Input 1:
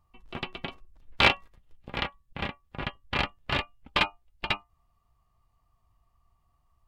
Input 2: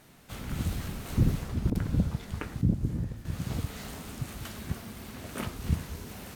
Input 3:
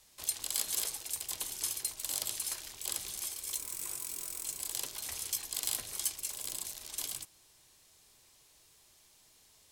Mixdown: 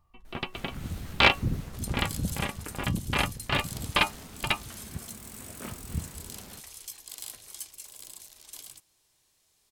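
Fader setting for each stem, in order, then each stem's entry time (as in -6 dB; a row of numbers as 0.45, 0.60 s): +1.0, -5.0, -6.5 dB; 0.00, 0.25, 1.55 s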